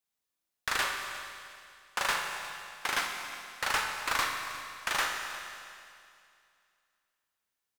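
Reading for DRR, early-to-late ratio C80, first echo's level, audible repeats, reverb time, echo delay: 2.5 dB, 4.5 dB, -17.0 dB, 1, 2.4 s, 356 ms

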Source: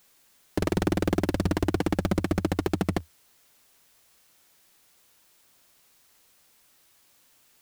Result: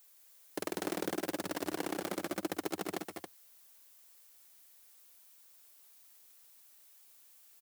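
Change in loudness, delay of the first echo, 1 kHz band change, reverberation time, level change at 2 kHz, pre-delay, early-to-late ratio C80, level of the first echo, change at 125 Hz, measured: -10.5 dB, 119 ms, -7.0 dB, no reverb, -6.5 dB, no reverb, no reverb, -16.5 dB, -22.5 dB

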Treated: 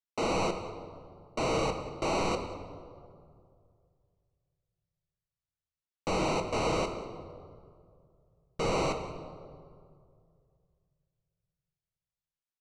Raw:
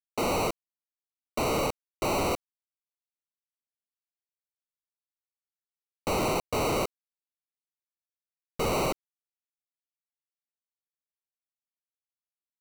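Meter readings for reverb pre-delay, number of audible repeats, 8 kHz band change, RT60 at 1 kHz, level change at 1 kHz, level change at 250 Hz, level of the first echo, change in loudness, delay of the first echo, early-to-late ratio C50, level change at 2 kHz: 6 ms, 1, -5.0 dB, 2.1 s, -1.5 dB, -1.5 dB, -20.0 dB, -2.5 dB, 187 ms, 8.0 dB, -2.0 dB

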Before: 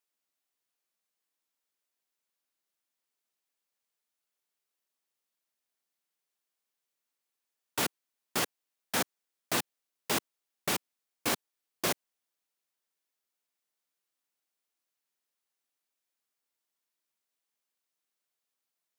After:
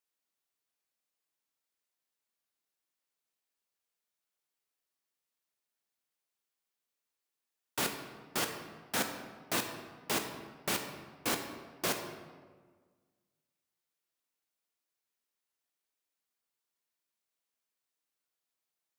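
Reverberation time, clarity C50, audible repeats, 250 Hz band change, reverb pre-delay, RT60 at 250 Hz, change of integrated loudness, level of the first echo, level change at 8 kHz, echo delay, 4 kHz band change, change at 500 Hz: 1.6 s, 7.0 dB, no echo, -1.5 dB, 15 ms, 1.8 s, -3.0 dB, no echo, -2.5 dB, no echo, -2.0 dB, -1.5 dB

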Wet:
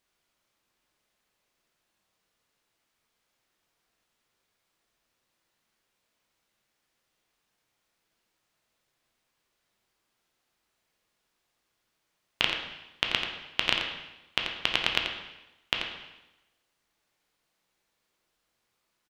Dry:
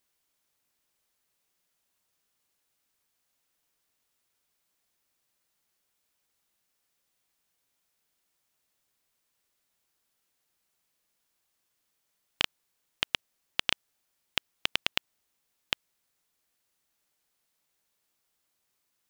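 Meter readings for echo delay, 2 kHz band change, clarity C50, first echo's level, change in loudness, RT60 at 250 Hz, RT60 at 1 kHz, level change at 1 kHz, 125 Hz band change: 86 ms, +4.5 dB, 3.0 dB, -8.0 dB, +3.5 dB, 1.0 s, 0.95 s, +5.5 dB, +5.5 dB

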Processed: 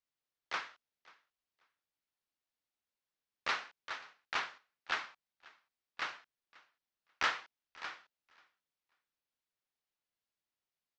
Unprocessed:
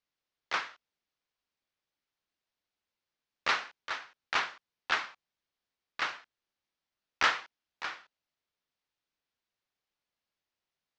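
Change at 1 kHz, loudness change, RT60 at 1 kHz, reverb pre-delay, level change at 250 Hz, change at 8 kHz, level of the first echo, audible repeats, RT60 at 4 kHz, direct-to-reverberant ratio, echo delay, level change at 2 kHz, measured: -6.0 dB, -6.0 dB, no reverb, no reverb, -6.0 dB, -6.0 dB, -23.5 dB, 1, no reverb, no reverb, 537 ms, -6.0 dB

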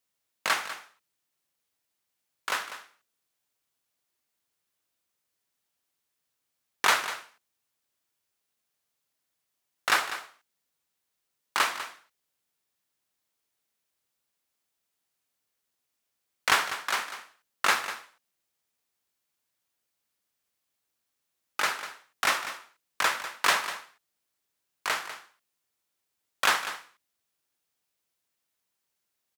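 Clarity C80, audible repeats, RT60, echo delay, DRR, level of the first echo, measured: no reverb, 1, no reverb, 197 ms, no reverb, -12.5 dB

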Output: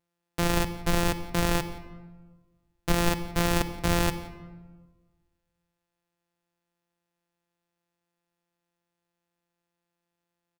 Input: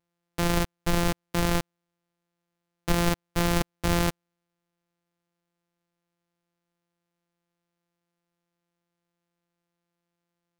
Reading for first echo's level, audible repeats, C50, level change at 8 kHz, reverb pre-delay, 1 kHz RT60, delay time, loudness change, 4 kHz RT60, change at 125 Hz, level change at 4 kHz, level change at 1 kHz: -23.0 dB, 1, 11.5 dB, 0.0 dB, 40 ms, 1.3 s, 173 ms, -0.5 dB, 0.75 s, -1.0 dB, 0.0 dB, +0.5 dB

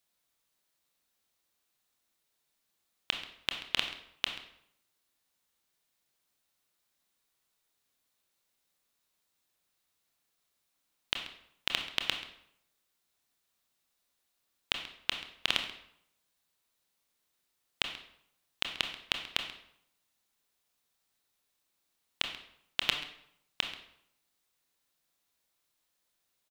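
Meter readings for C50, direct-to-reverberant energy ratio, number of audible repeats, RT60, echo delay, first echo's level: 7.5 dB, 4.0 dB, 1, 0.70 s, 134 ms, -16.5 dB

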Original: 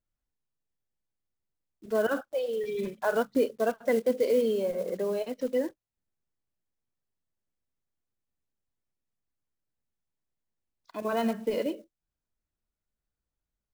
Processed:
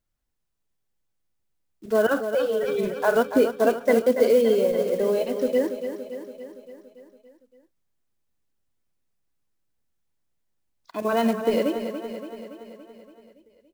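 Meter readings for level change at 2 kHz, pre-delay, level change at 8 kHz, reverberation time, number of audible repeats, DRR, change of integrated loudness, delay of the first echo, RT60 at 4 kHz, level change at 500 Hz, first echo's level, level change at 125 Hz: +6.5 dB, no reverb, +7.0 dB, no reverb, 6, no reverb, +6.5 dB, 284 ms, no reverb, +7.0 dB, -9.0 dB, no reading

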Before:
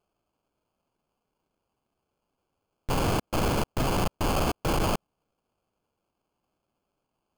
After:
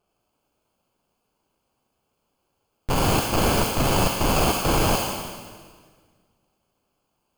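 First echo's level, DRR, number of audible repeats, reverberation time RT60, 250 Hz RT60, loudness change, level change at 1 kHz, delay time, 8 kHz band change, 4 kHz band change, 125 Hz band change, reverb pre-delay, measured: no echo, 1.0 dB, no echo, 1.7 s, 1.9 s, +6.0 dB, +6.0 dB, no echo, +10.5 dB, +8.5 dB, +5.0 dB, 33 ms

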